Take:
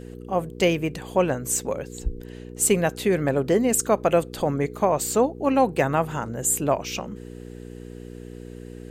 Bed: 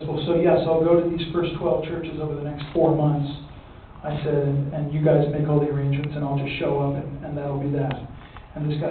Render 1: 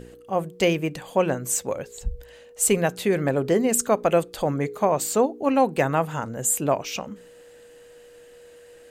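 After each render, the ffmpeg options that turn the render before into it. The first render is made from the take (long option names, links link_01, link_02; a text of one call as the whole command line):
ffmpeg -i in.wav -af "bandreject=frequency=60:width_type=h:width=4,bandreject=frequency=120:width_type=h:width=4,bandreject=frequency=180:width_type=h:width=4,bandreject=frequency=240:width_type=h:width=4,bandreject=frequency=300:width_type=h:width=4,bandreject=frequency=360:width_type=h:width=4,bandreject=frequency=420:width_type=h:width=4" out.wav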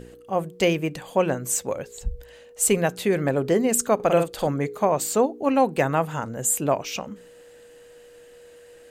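ffmpeg -i in.wav -filter_complex "[0:a]asettb=1/sr,asplit=3[link_01][link_02][link_03];[link_01]atrim=end=3.954[link_04];[link_02]atrim=start=3.95:end=4.48,asetpts=PTS-STARTPTS,afade=type=in:duration=0.004:curve=qsin,afade=type=out:start_time=0.526:duration=0.004:curve=qsin,asplit=2[link_05][link_06];[link_06]adelay=48,volume=-6dB[link_07];[link_05][link_07]amix=inputs=2:normalize=0,atrim=end_sample=23373[link_08];[link_03]atrim=start=4.476[link_09];[link_04][link_08]acrossfade=duration=0.004:curve1=hsin:curve2=qsin[link_10];[link_10][link_09]acrossfade=duration=0.004:curve1=qsin:curve2=hsin" out.wav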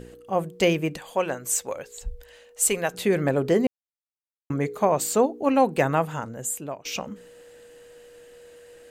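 ffmpeg -i in.wav -filter_complex "[0:a]asettb=1/sr,asplit=3[link_01][link_02][link_03];[link_01]atrim=end=0.974[link_04];[link_02]atrim=start=0.97:end=2.94,asetpts=PTS-STARTPTS,afade=type=in:duration=0.004:curve=qsin,afade=type=out:start_time=1.966:duration=0.004:curve=qsin,equalizer=frequency=140:width=0.38:gain=-10.5[link_05];[link_03]atrim=start=2.936[link_06];[link_04][link_05]acrossfade=duration=0.004:curve1=hsin:curve2=qsin[link_07];[link_07][link_06]acrossfade=duration=0.004:curve1=qsin:curve2=hsin,asplit=4[link_08][link_09][link_10][link_11];[link_08]atrim=end=3.67,asetpts=PTS-STARTPTS,afade=type=out:start_time=3.666:duration=0.004:curve=hsin[link_12];[link_09]atrim=start=3.67:end=4.5,asetpts=PTS-STARTPTS,volume=0[link_13];[link_10]atrim=start=4.5:end=6.85,asetpts=PTS-STARTPTS,afade=type=in:duration=0.004:curve=hsin,afade=type=out:start_time=1.45:duration=0.9:silence=0.11885[link_14];[link_11]atrim=start=6.85,asetpts=PTS-STARTPTS,afade=type=in:duration=0.004:curve=hsin:silence=0.11885[link_15];[link_12][link_13][link_14][link_15]concat=n=4:v=0:a=1" out.wav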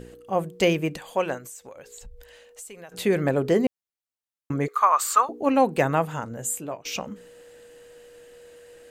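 ffmpeg -i in.wav -filter_complex "[0:a]asettb=1/sr,asplit=3[link_01][link_02][link_03];[link_01]atrim=end=1.384[link_04];[link_02]atrim=start=1.38:end=2.92,asetpts=PTS-STARTPTS,afade=type=in:duration=0.004:curve=qsin,afade=type=out:start_time=1.536:duration=0.004:curve=qsin,acompressor=threshold=-39dB:ratio=8:attack=3.2:release=140:knee=1:detection=peak[link_05];[link_03]atrim=start=2.916[link_06];[link_04][link_05]acrossfade=duration=0.004:curve1=hsin:curve2=qsin[link_07];[link_07][link_06]acrossfade=duration=0.004:curve1=qsin:curve2=hsin,asettb=1/sr,asplit=3[link_08][link_09][link_10];[link_08]atrim=end=4.684[link_11];[link_09]atrim=start=4.68:end=5.29,asetpts=PTS-STARTPTS,afade=type=in:duration=0.004:curve=qsin,afade=type=out:start_time=0.606:duration=0.004:curve=qsin,highpass=frequency=1200:width_type=q:width=9.7[link_12];[link_10]atrim=start=5.286[link_13];[link_11][link_12]acrossfade=duration=0.004:curve1=hsin:curve2=qsin[link_14];[link_14][link_13]acrossfade=duration=0.004:curve1=qsin:curve2=hsin,asettb=1/sr,asplit=3[link_15][link_16][link_17];[link_15]atrim=end=6.294[link_18];[link_16]atrim=start=6.29:end=6.79,asetpts=PTS-STARTPTS,afade=type=in:duration=0.004:curve=qsin,afade=type=out:start_time=0.496:duration=0.004:curve=qsin,asplit=2[link_19][link_20];[link_20]adelay=17,volume=-8dB[link_21];[link_19][link_21]amix=inputs=2:normalize=0,atrim=end_sample=22050[link_22];[link_17]atrim=start=6.786[link_23];[link_18][link_22]acrossfade=duration=0.004:curve1=hsin:curve2=qsin[link_24];[link_24][link_23]acrossfade=duration=0.004:curve1=qsin:curve2=hsin" out.wav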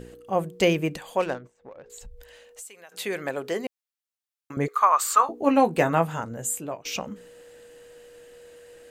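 ffmpeg -i in.wav -filter_complex "[0:a]asettb=1/sr,asplit=3[link_01][link_02][link_03];[link_01]atrim=end=1.204[link_04];[link_02]atrim=start=1.2:end=1.9,asetpts=PTS-STARTPTS,afade=type=in:duration=0.004:curve=qsin,afade=type=out:start_time=0.696:duration=0.004:curve=qsin,adynamicsmooth=sensitivity=6:basefreq=1000[link_05];[link_03]atrim=start=1.896[link_06];[link_04][link_05]acrossfade=duration=0.004:curve1=hsin:curve2=qsin[link_07];[link_07][link_06]acrossfade=duration=0.004:curve1=qsin:curve2=hsin,asettb=1/sr,asplit=3[link_08][link_09][link_10];[link_08]atrim=end=2.624[link_11];[link_09]atrim=start=2.62:end=4.57,asetpts=PTS-STARTPTS,afade=type=in:duration=0.004:curve=qsin,afade=type=out:start_time=1.946:duration=0.004:curve=qsin,highpass=frequency=990:poles=1[link_12];[link_10]atrim=start=4.566[link_13];[link_11][link_12]acrossfade=duration=0.004:curve1=hsin:curve2=qsin[link_14];[link_14][link_13]acrossfade=duration=0.004:curve1=qsin:curve2=hsin,asettb=1/sr,asplit=3[link_15][link_16][link_17];[link_15]atrim=end=5.184[link_18];[link_16]atrim=start=5.18:end=6.22,asetpts=PTS-STARTPTS,afade=type=in:duration=0.004:curve=qsin,afade=type=out:start_time=1.036:duration=0.004:curve=qsin,asplit=2[link_19][link_20];[link_20]adelay=18,volume=-8dB[link_21];[link_19][link_21]amix=inputs=2:normalize=0,atrim=end_sample=45864[link_22];[link_17]atrim=start=6.216[link_23];[link_18][link_22]acrossfade=duration=0.004:curve1=hsin:curve2=qsin[link_24];[link_24][link_23]acrossfade=duration=0.004:curve1=qsin:curve2=hsin" out.wav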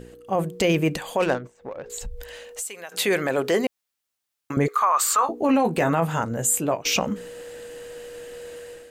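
ffmpeg -i in.wav -af "dynaudnorm=framelen=130:gausssize=5:maxgain=10dB,alimiter=limit=-12dB:level=0:latency=1:release=16" out.wav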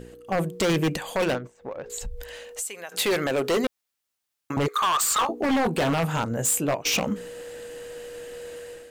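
ffmpeg -i in.wav -af "aeval=exprs='0.141*(abs(mod(val(0)/0.141+3,4)-2)-1)':channel_layout=same" out.wav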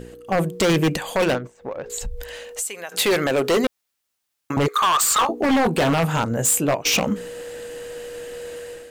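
ffmpeg -i in.wav -af "volume=4.5dB" out.wav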